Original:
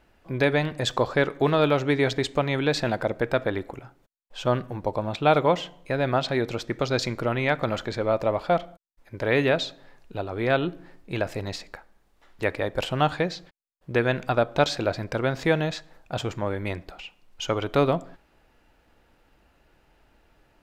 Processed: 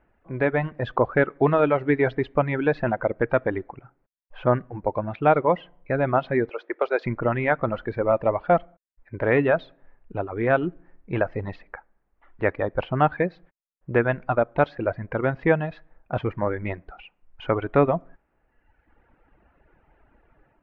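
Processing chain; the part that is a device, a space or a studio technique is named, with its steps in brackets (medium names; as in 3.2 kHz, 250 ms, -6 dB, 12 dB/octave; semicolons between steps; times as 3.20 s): 6.49–7.06 s: steep high-pass 350 Hz 36 dB/octave; reverb removal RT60 1.3 s; action camera in a waterproof case (low-pass 2.1 kHz 24 dB/octave; level rider gain up to 7.5 dB; trim -3 dB; AAC 64 kbps 44.1 kHz)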